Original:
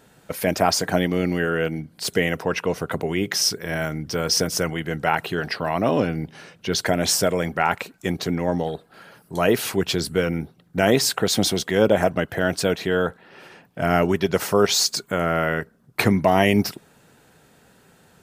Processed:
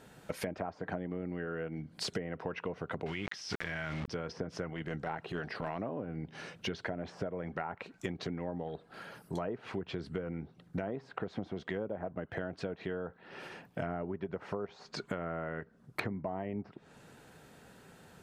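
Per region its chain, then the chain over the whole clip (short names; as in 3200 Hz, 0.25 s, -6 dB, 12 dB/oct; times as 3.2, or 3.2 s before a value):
3.06–4.08 passive tone stack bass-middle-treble 5-5-5 + requantised 8-bit, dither none + fast leveller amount 100%
4.71–5.8 de-esser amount 100% + transient shaper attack -11 dB, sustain -2 dB
whole clip: treble ducked by the level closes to 1200 Hz, closed at -16.5 dBFS; high shelf 4600 Hz -4.5 dB; compressor 16:1, threshold -32 dBFS; gain -1.5 dB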